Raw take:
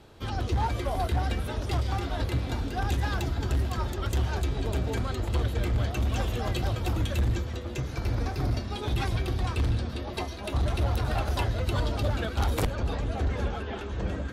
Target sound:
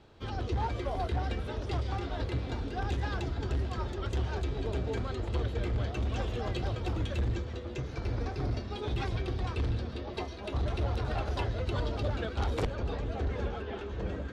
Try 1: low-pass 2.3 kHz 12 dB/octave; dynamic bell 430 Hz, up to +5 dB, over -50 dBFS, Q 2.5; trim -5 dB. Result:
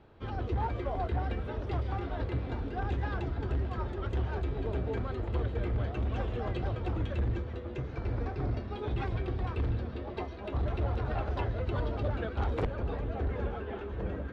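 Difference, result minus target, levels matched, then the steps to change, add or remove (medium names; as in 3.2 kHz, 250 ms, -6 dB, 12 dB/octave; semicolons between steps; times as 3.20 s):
4 kHz band -7.5 dB
change: low-pass 5.6 kHz 12 dB/octave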